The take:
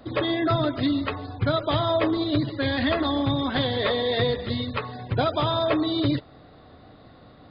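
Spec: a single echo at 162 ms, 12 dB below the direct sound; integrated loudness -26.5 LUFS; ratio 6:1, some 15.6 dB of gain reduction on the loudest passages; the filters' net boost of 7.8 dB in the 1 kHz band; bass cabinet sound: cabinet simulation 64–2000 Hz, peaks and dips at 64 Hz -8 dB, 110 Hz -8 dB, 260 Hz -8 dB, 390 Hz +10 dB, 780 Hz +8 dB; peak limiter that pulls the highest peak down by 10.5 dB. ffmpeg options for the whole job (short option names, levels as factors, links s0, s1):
-af "equalizer=f=1000:t=o:g=6,acompressor=threshold=0.02:ratio=6,alimiter=level_in=2:limit=0.0631:level=0:latency=1,volume=0.501,highpass=f=64:w=0.5412,highpass=f=64:w=1.3066,equalizer=f=64:t=q:w=4:g=-8,equalizer=f=110:t=q:w=4:g=-8,equalizer=f=260:t=q:w=4:g=-8,equalizer=f=390:t=q:w=4:g=10,equalizer=f=780:t=q:w=4:g=8,lowpass=f=2000:w=0.5412,lowpass=f=2000:w=1.3066,aecho=1:1:162:0.251,volume=3.76"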